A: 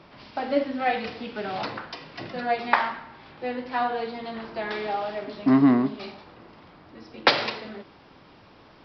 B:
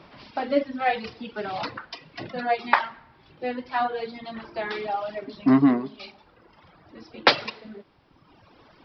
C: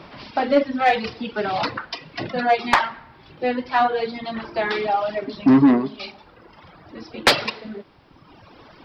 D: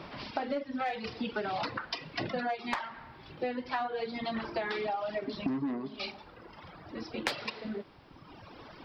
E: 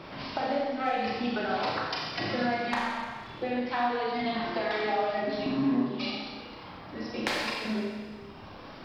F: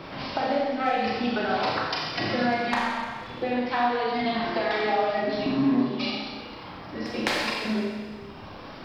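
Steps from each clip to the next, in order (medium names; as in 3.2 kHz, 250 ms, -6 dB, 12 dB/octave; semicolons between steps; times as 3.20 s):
reverb removal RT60 1.5 s; trim +1.5 dB
saturation -15 dBFS, distortion -11 dB; trim +7.5 dB
compression 20:1, threshold -27 dBFS, peak gain reduction 17.5 dB; trim -3 dB
Schroeder reverb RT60 1.6 s, combs from 29 ms, DRR -3.5 dB
pre-echo 210 ms -19.5 dB; trim +4 dB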